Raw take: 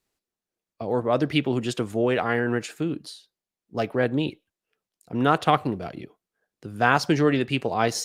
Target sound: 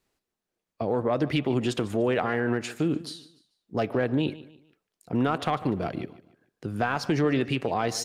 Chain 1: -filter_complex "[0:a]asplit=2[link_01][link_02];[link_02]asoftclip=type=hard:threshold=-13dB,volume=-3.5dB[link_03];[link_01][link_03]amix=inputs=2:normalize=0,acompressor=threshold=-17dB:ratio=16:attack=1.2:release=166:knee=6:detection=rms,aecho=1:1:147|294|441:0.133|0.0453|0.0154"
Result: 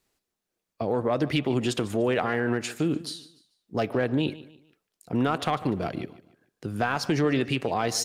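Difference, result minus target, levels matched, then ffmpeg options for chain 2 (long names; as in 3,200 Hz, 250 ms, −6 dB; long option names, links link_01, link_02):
8,000 Hz band +4.0 dB
-filter_complex "[0:a]asplit=2[link_01][link_02];[link_02]asoftclip=type=hard:threshold=-13dB,volume=-3.5dB[link_03];[link_01][link_03]amix=inputs=2:normalize=0,acompressor=threshold=-17dB:ratio=16:attack=1.2:release=166:knee=6:detection=rms,highshelf=frequency=3900:gain=-5.5,aecho=1:1:147|294|441:0.133|0.0453|0.0154"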